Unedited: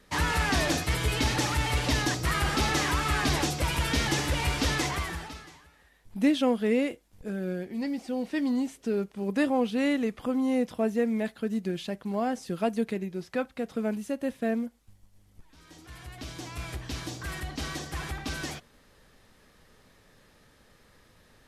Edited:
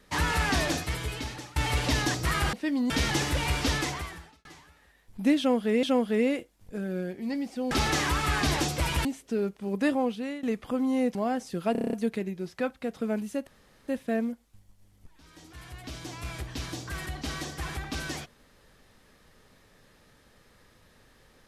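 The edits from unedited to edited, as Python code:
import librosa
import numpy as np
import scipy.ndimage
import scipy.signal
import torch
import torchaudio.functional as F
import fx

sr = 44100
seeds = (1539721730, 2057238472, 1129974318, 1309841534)

y = fx.edit(x, sr, fx.fade_out_to(start_s=0.51, length_s=1.05, floor_db=-24.0),
    fx.swap(start_s=2.53, length_s=1.34, other_s=8.23, other_length_s=0.37),
    fx.fade_out_span(start_s=4.67, length_s=0.75),
    fx.repeat(start_s=6.35, length_s=0.45, count=2),
    fx.fade_out_to(start_s=9.49, length_s=0.49, floor_db=-17.5),
    fx.cut(start_s=10.7, length_s=1.41),
    fx.stutter(start_s=12.68, slice_s=0.03, count=8),
    fx.insert_room_tone(at_s=14.22, length_s=0.41), tone=tone)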